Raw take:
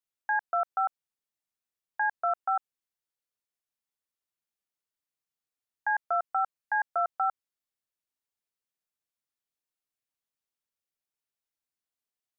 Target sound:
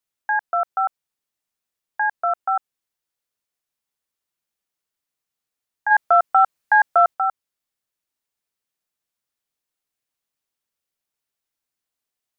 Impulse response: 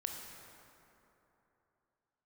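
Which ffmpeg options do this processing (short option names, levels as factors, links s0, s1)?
-filter_complex "[0:a]asplit=3[s0][s1][s2];[s0]afade=t=out:st=5.9:d=0.02[s3];[s1]acontrast=75,afade=t=in:st=5.9:d=0.02,afade=t=out:st=7.13:d=0.02[s4];[s2]afade=t=in:st=7.13:d=0.02[s5];[s3][s4][s5]amix=inputs=3:normalize=0,volume=2.11"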